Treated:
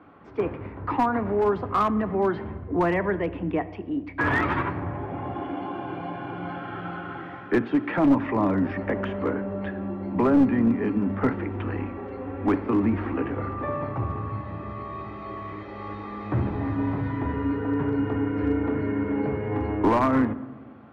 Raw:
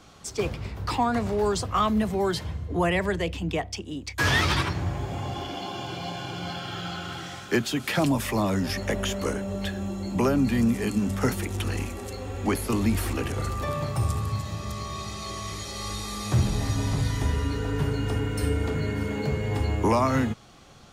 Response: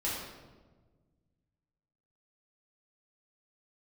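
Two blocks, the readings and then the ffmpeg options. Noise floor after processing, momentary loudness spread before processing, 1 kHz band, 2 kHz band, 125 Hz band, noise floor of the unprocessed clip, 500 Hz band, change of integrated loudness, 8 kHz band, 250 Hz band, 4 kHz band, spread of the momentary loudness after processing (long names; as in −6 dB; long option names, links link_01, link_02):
−40 dBFS, 10 LU, +2.0 dB, −1.0 dB, −3.5 dB, −42 dBFS, +2.0 dB, +1.0 dB, below −25 dB, +3.5 dB, below −15 dB, 14 LU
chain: -filter_complex "[0:a]highpass=110,equalizer=frequency=150:width_type=q:width=4:gain=-6,equalizer=frequency=290:width_type=q:width=4:gain=8,equalizer=frequency=1000:width_type=q:width=4:gain=3,lowpass=frequency=2000:width=0.5412,lowpass=frequency=2000:width=1.3066,asplit=2[link_01][link_02];[1:a]atrim=start_sample=2205[link_03];[link_02][link_03]afir=irnorm=-1:irlink=0,volume=-18dB[link_04];[link_01][link_04]amix=inputs=2:normalize=0,aeval=exprs='clip(val(0),-1,0.15)':channel_layout=same"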